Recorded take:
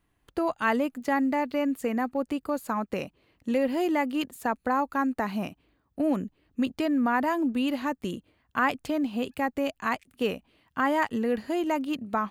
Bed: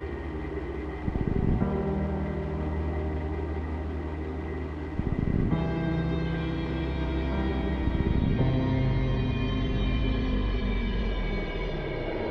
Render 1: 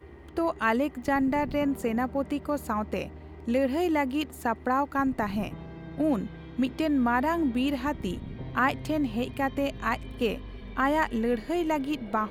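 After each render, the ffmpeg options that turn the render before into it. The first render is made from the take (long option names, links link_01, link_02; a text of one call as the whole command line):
ffmpeg -i in.wav -i bed.wav -filter_complex "[1:a]volume=-13.5dB[link_01];[0:a][link_01]amix=inputs=2:normalize=0" out.wav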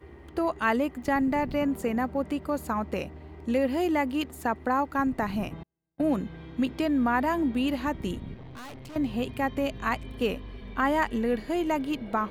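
ffmpeg -i in.wav -filter_complex "[0:a]asettb=1/sr,asplit=3[link_01][link_02][link_03];[link_01]atrim=end=5.634[link_04];[link_02]atrim=start=5.63:end=6.15,asetpts=PTS-STARTPTS,afade=type=in:duration=0.004:curve=qsin,afade=type=out:start_time=0.516:duration=0.004:curve=qsin,agate=range=-45dB:threshold=-34dB:ratio=16:release=100:detection=peak[link_05];[link_03]atrim=start=6.146[link_06];[link_04][link_05]acrossfade=duration=0.004:curve1=hsin:curve2=qsin[link_07];[link_07][link_06]acrossfade=duration=0.004:curve1=qsin:curve2=hsin,asettb=1/sr,asplit=3[link_08][link_09][link_10];[link_08]atrim=end=8.344[link_11];[link_09]atrim=start=8.34:end=8.96,asetpts=PTS-STARTPTS,afade=type=in:duration=0.004:curve=qsin,afade=type=out:start_time=0.616:duration=0.004:curve=qsin,aeval=exprs='(tanh(112*val(0)+0.55)-tanh(0.55))/112':channel_layout=same[link_12];[link_10]atrim=start=8.956[link_13];[link_11][link_12]acrossfade=duration=0.004:curve1=hsin:curve2=qsin[link_14];[link_14][link_13]acrossfade=duration=0.004:curve1=qsin:curve2=hsin" out.wav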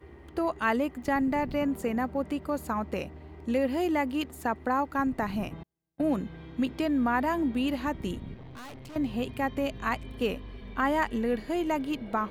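ffmpeg -i in.wav -af "volume=-1.5dB" out.wav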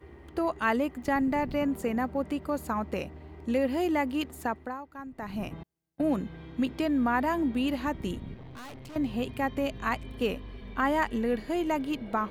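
ffmpeg -i in.wav -filter_complex "[0:a]asplit=3[link_01][link_02][link_03];[link_01]atrim=end=4.79,asetpts=PTS-STARTPTS,afade=type=out:start_time=4.41:duration=0.38:silence=0.199526[link_04];[link_02]atrim=start=4.79:end=5.13,asetpts=PTS-STARTPTS,volume=-14dB[link_05];[link_03]atrim=start=5.13,asetpts=PTS-STARTPTS,afade=type=in:duration=0.38:silence=0.199526[link_06];[link_04][link_05][link_06]concat=n=3:v=0:a=1" out.wav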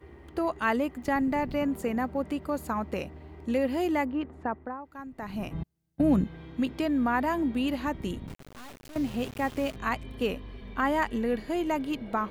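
ffmpeg -i in.wav -filter_complex "[0:a]asplit=3[link_01][link_02][link_03];[link_01]afade=type=out:start_time=4.04:duration=0.02[link_04];[link_02]lowpass=1600,afade=type=in:start_time=4.04:duration=0.02,afade=type=out:start_time=4.84:duration=0.02[link_05];[link_03]afade=type=in:start_time=4.84:duration=0.02[link_06];[link_04][link_05][link_06]amix=inputs=3:normalize=0,asettb=1/sr,asplit=3[link_07][link_08][link_09];[link_07]atrim=end=5.544[link_10];[link_08]atrim=start=5.54:end=6.24,asetpts=PTS-STARTPTS,afade=type=in:duration=0.004:curve=qsin,afade=type=out:start_time=0.696:duration=0.004:curve=qsin,bass=frequency=250:gain=12,treble=frequency=4000:gain=1[link_11];[link_09]atrim=start=6.236[link_12];[link_10][link_11]acrossfade=duration=0.004:curve1=hsin:curve2=qsin[link_13];[link_13][link_12]acrossfade=duration=0.004:curve1=qsin:curve2=hsin,asettb=1/sr,asplit=3[link_14][link_15][link_16];[link_14]atrim=end=8.274[link_17];[link_15]atrim=start=8.27:end=9.76,asetpts=PTS-STARTPTS,afade=type=in:duration=0.004:curve=qsin,afade=type=out:start_time=1.486:duration=0.004:curve=qsin,aeval=exprs='val(0)*gte(abs(val(0)),0.0106)':channel_layout=same[link_18];[link_16]atrim=start=9.756[link_19];[link_17][link_18]acrossfade=duration=0.004:curve1=hsin:curve2=qsin[link_20];[link_20][link_19]acrossfade=duration=0.004:curve1=qsin:curve2=hsin" out.wav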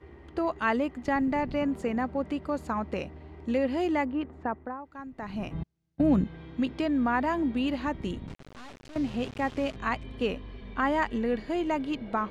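ffmpeg -i in.wav -af "lowpass=6100" out.wav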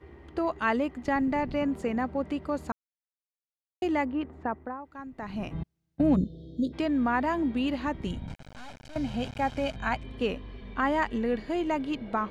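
ffmpeg -i in.wav -filter_complex "[0:a]asplit=3[link_01][link_02][link_03];[link_01]afade=type=out:start_time=6.15:duration=0.02[link_04];[link_02]asuperstop=centerf=1500:order=20:qfactor=0.54,afade=type=in:start_time=6.15:duration=0.02,afade=type=out:start_time=6.72:duration=0.02[link_05];[link_03]afade=type=in:start_time=6.72:duration=0.02[link_06];[link_04][link_05][link_06]amix=inputs=3:normalize=0,asettb=1/sr,asplit=3[link_07][link_08][link_09];[link_07]atrim=end=8.074[link_10];[link_08]atrim=start=8.07:end=9.96,asetpts=PTS-STARTPTS,afade=type=in:duration=0.004:curve=qsin,afade=type=out:start_time=1.886:duration=0.004:curve=qsin,aecho=1:1:1.3:0.57,atrim=end_sample=83349[link_11];[link_09]atrim=start=9.956[link_12];[link_10][link_11]acrossfade=duration=0.004:curve1=hsin:curve2=qsin[link_13];[link_13][link_12]acrossfade=duration=0.004:curve1=qsin:curve2=hsin,asplit=3[link_14][link_15][link_16];[link_14]atrim=end=2.72,asetpts=PTS-STARTPTS,afade=type=out:start_time=2.716:duration=0.004:curve=hsin[link_17];[link_15]atrim=start=2.72:end=3.82,asetpts=PTS-STARTPTS,volume=0[link_18];[link_16]atrim=start=3.82,asetpts=PTS-STARTPTS,afade=type=in:duration=0.004:curve=hsin[link_19];[link_17][link_18][link_19]concat=n=3:v=0:a=1" out.wav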